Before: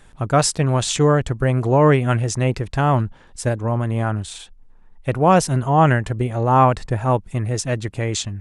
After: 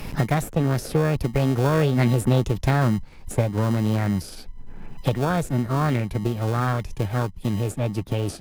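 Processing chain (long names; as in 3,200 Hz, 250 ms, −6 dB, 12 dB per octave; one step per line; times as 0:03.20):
source passing by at 0:02.44, 16 m/s, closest 6 metres
low-shelf EQ 150 Hz +11 dB
in parallel at −11 dB: sample-rate reduction 1,000 Hz, jitter 0%
on the sum: formants moved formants +6 semitones
multiband upward and downward compressor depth 100%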